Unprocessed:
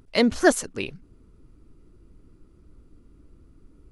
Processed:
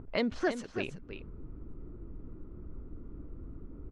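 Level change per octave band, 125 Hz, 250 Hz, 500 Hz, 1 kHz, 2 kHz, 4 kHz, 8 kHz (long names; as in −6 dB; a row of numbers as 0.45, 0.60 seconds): −1.5, −10.5, −10.5, −11.5, −11.0, −11.5, −22.0 decibels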